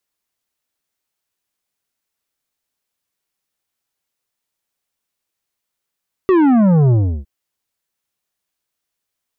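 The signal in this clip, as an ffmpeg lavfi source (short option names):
-f lavfi -i "aevalsrc='0.316*clip((0.96-t)/0.34,0,1)*tanh(3.16*sin(2*PI*390*0.96/log(65/390)*(exp(log(65/390)*t/0.96)-1)))/tanh(3.16)':d=0.96:s=44100"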